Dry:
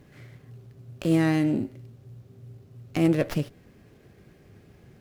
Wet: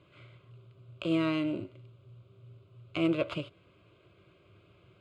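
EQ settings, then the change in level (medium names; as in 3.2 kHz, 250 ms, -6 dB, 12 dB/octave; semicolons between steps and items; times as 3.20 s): cabinet simulation 140–6100 Hz, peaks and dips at 150 Hz -8 dB, 440 Hz -9 dB, 1.8 kHz -5 dB, 4.3 kHz -4 dB; peaking EQ 480 Hz -4.5 dB 0.47 oct; static phaser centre 1.2 kHz, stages 8; +2.5 dB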